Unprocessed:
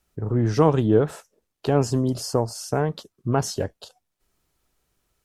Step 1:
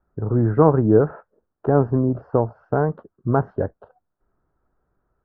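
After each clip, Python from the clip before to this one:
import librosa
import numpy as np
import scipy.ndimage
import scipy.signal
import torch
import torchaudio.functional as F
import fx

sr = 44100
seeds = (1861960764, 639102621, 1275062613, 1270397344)

y = scipy.signal.sosfilt(scipy.signal.cheby1(4, 1.0, 1500.0, 'lowpass', fs=sr, output='sos'), x)
y = F.gain(torch.from_numpy(y), 3.5).numpy()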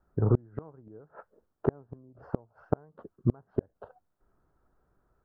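y = fx.gate_flip(x, sr, shuts_db=-11.0, range_db=-35)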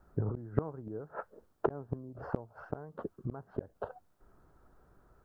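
y = fx.over_compress(x, sr, threshold_db=-32.0, ratio=-1.0)
y = F.gain(torch.from_numpy(y), 1.0).numpy()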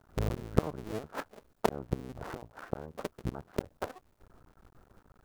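y = fx.cycle_switch(x, sr, every=2, mode='muted')
y = F.gain(torch.from_numpy(y), 5.5).numpy()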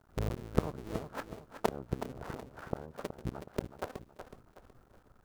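y = fx.echo_feedback(x, sr, ms=371, feedback_pct=38, wet_db=-9.5)
y = F.gain(torch.from_numpy(y), -2.5).numpy()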